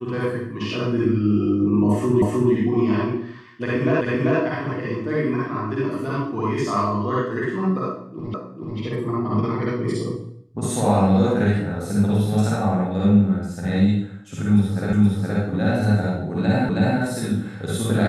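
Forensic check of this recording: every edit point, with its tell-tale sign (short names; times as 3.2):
2.22 repeat of the last 0.31 s
4.01 repeat of the last 0.39 s
8.34 repeat of the last 0.44 s
14.93 repeat of the last 0.47 s
16.69 repeat of the last 0.32 s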